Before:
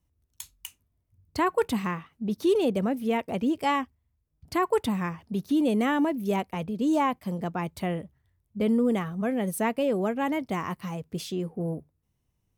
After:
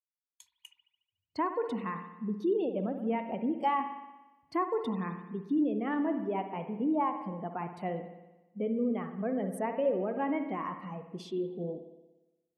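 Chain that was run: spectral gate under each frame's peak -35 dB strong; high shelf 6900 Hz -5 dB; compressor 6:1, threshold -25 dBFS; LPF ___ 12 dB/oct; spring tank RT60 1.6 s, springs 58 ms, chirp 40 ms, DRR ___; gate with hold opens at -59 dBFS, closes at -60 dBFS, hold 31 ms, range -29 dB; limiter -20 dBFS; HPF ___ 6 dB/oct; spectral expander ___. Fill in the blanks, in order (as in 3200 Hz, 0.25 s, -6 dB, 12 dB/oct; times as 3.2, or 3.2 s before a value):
12000 Hz, 4.5 dB, 390 Hz, 1.5:1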